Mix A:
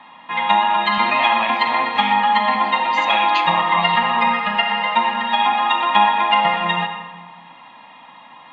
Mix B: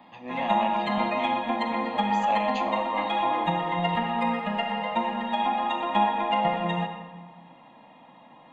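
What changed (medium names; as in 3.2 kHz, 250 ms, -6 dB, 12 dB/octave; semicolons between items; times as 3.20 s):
speech: entry -0.80 s; master: add high-order bell 2.2 kHz -13.5 dB 2.9 oct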